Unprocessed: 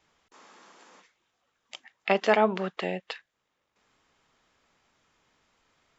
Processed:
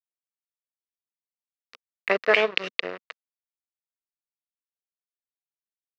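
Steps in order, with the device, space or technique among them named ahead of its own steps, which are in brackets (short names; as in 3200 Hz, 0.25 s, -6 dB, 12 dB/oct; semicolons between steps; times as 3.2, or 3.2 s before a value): 2.34–2.8 resonant high shelf 2000 Hz +12.5 dB, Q 3; blown loudspeaker (crossover distortion -29.5 dBFS; speaker cabinet 220–4600 Hz, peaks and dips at 230 Hz -9 dB, 480 Hz +5 dB, 820 Hz -10 dB, 1200 Hz +5 dB, 1900 Hz +5 dB, 3300 Hz -8 dB); gain +3.5 dB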